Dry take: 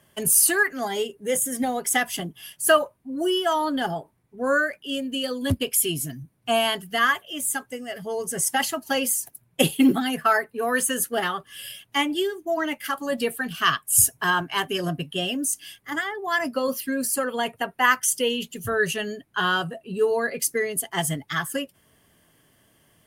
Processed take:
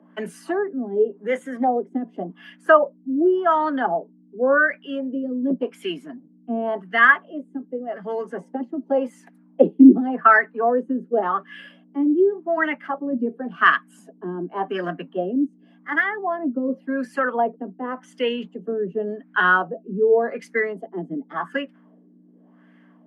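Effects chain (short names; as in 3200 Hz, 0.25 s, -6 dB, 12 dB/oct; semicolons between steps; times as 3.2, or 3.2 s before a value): LFO low-pass sine 0.89 Hz 300–1900 Hz; hum 60 Hz, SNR 22 dB; steep high-pass 180 Hz 96 dB/oct; gain +1 dB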